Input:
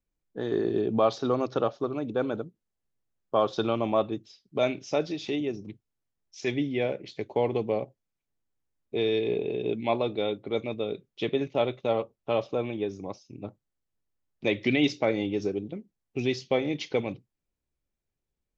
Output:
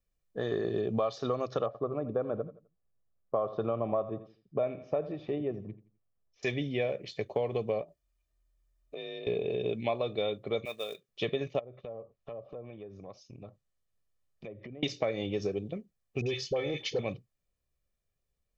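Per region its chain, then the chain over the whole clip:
0:01.66–0:06.43: low-pass filter 1,200 Hz + repeating echo 85 ms, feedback 31%, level −16 dB
0:07.81–0:09.27: comb filter 3.4 ms, depth 57% + frequency shifter +41 Hz + downward compressor 5 to 1, threshold −39 dBFS
0:10.65–0:11.09: high-pass filter 1,200 Hz 6 dB per octave + floating-point word with a short mantissa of 2 bits
0:11.59–0:14.83: treble cut that deepens with the level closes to 640 Hz, closed at −23 dBFS + downward compressor 4 to 1, threshold −43 dBFS
0:16.21–0:16.99: comb filter 2.3 ms, depth 47% + downward compressor 2.5 to 1, threshold −26 dBFS + all-pass dispersion highs, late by 53 ms, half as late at 910 Hz
whole clip: comb filter 1.7 ms, depth 50%; downward compressor 6 to 1, threshold −27 dBFS

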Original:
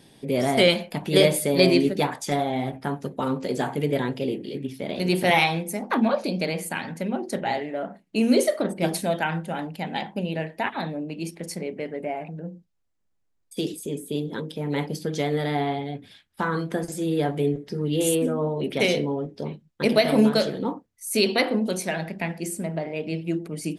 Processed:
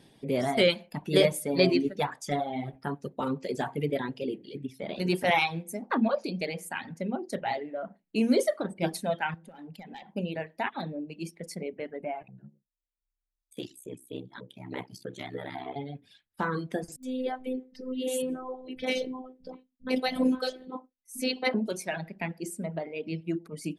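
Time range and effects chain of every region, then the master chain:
0:09.34–0:10.13: downward compressor 5 to 1, threshold −34 dBFS + gain into a clipping stage and back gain 31 dB
0:12.22–0:15.76: ring modulation 32 Hz + low-shelf EQ 430 Hz −6 dB + auto-filter notch square 3.2 Hz 490–5,100 Hz
0:16.96–0:21.54: phases set to zero 256 Hz + multiband delay without the direct sound lows, highs 70 ms, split 190 Hz
whole clip: reverb reduction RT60 1.8 s; high-shelf EQ 5,300 Hz −5.5 dB; level −3.5 dB

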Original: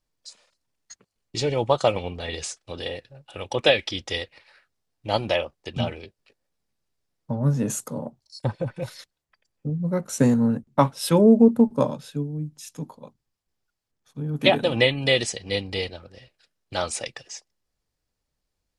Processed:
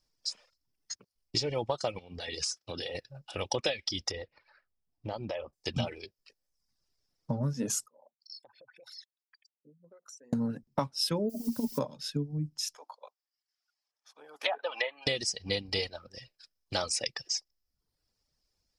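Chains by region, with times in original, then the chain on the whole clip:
0:01.99–0:02.95: high-pass filter 75 Hz + downward compressor 4 to 1, threshold −34 dBFS
0:04.11–0:05.53: low-pass filter 1,000 Hz 6 dB per octave + downward compressor 5 to 1, threshold −32 dBFS
0:07.86–0:10.33: spectral envelope exaggerated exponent 2 + high-pass filter 1,400 Hz + downward compressor 16 to 1, threshold −52 dBFS
0:11.28–0:11.78: EQ curve with evenly spaced ripples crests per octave 1.5, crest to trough 9 dB + compressor whose output falls as the input rises −16 dBFS, ratio −0.5 + background noise violet −39 dBFS
0:12.75–0:15.07: high-pass filter 650 Hz 24 dB per octave + high-shelf EQ 5,000 Hz −7 dB + treble cut that deepens with the level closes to 1,600 Hz, closed at −21.5 dBFS
whole clip: reverb reduction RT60 0.74 s; parametric band 5,200 Hz +13.5 dB 0.4 octaves; downward compressor 12 to 1, threshold −27 dBFS

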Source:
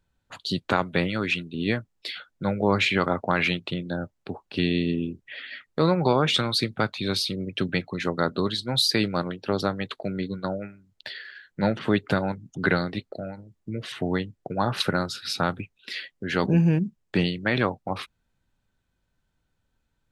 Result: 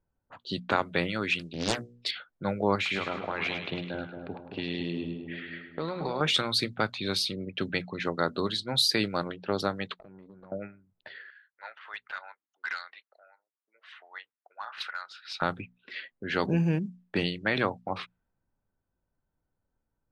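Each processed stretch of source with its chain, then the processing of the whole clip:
0:01.39–0:02.11: bass and treble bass +3 dB, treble +15 dB + mains-hum notches 60/120/180/240/300/360/420/480/540 Hz + highs frequency-modulated by the lows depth 0.93 ms
0:02.75–0:06.21: downward compressor 5 to 1, threshold −24 dBFS + echo with a time of its own for lows and highs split 850 Hz, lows 225 ms, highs 104 ms, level −6.5 dB
0:09.94–0:10.52: downward compressor 16 to 1, threshold −37 dBFS + tube saturation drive 39 dB, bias 0.55
0:11.30–0:15.42: Bessel high-pass filter 1,600 Hz, order 4 + hard clipping −24.5 dBFS
whole clip: mains-hum notches 60/120/180/240 Hz; low-pass that shuts in the quiet parts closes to 970 Hz, open at −21.5 dBFS; low-shelf EQ 290 Hz −5 dB; level −2 dB

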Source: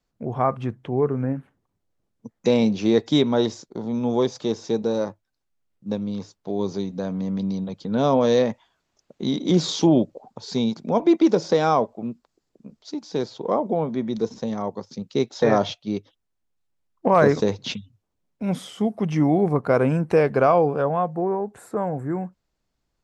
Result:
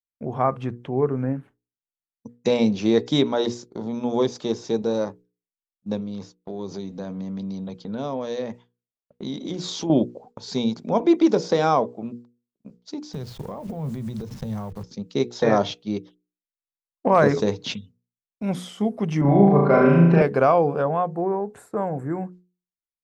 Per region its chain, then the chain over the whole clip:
0:06.00–0:09.90: downward compressor 2.5 to 1, threshold −29 dBFS + low-pass that shuts in the quiet parts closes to 2,200 Hz, open at −28 dBFS
0:13.13–0:14.84: hold until the input has moved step −43 dBFS + downward compressor 10 to 1, threshold −29 dBFS + low shelf with overshoot 190 Hz +13.5 dB, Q 1.5
0:19.21–0:20.22: high-frequency loss of the air 210 metres + comb filter 5.1 ms, depth 70% + flutter between parallel walls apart 6.1 metres, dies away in 1 s
whole clip: downward expander −40 dBFS; mains-hum notches 60/120/180/240/300/360/420/480 Hz

